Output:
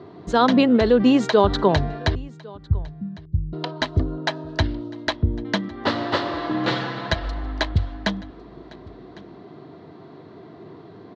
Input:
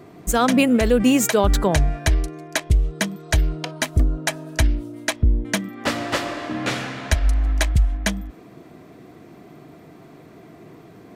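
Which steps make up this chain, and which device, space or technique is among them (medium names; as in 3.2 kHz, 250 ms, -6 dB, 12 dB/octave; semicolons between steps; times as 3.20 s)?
2.15–3.53 s: inverse Chebyshev low-pass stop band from 660 Hz, stop band 60 dB; guitar cabinet (cabinet simulation 92–4300 Hz, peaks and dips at 94 Hz +7 dB, 390 Hz +5 dB, 960 Hz +5 dB, 2.4 kHz -9 dB, 4.1 kHz +6 dB); 6.32–7.44 s: comb 6 ms, depth 56%; delay 1104 ms -23.5 dB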